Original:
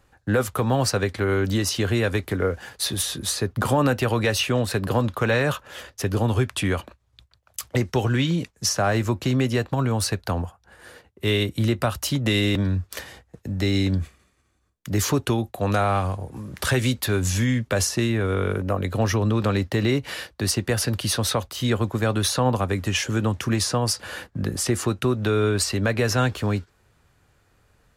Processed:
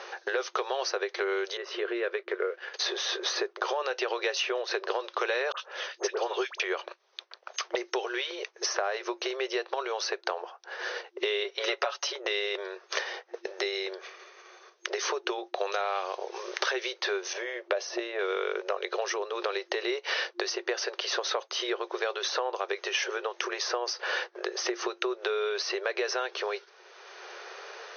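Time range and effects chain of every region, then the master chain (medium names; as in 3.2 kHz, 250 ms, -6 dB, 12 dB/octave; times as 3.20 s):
1.57–2.74 s: companding laws mixed up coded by A + low-pass 1.6 kHz + peaking EQ 820 Hz -9.5 dB 0.59 oct
5.52–6.60 s: high-pass 340 Hz + phase dispersion highs, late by 60 ms, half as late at 1.5 kHz + upward expansion, over -38 dBFS
11.44–12.12 s: high-pass 420 Hz + comb 7.1 ms, depth 80%
17.33–18.19 s: low-pass 1.5 kHz 6 dB/octave + peaking EQ 630 Hz +9 dB 0.38 oct
whole clip: compression, threshold -27 dBFS; FFT band-pass 350–6400 Hz; three bands compressed up and down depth 70%; trim +3 dB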